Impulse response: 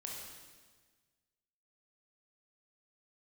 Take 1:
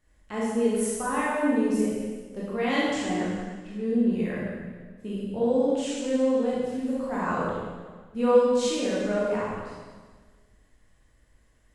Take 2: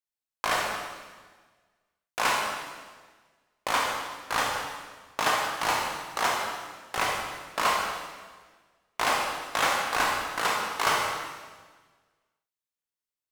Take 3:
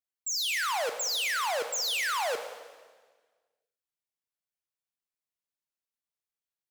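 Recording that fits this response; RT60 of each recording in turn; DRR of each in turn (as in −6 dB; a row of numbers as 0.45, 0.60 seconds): 2; 1.5, 1.5, 1.5 seconds; −7.5, −2.0, 7.5 decibels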